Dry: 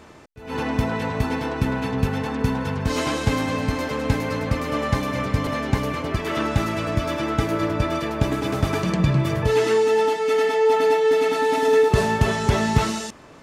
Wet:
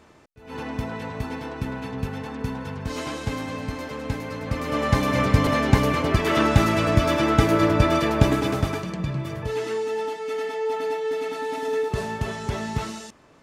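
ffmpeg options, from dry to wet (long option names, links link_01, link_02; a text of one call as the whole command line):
ffmpeg -i in.wav -af "volume=4dB,afade=type=in:start_time=4.4:duration=0.81:silence=0.281838,afade=type=out:start_time=8.2:duration=0.67:silence=0.237137" out.wav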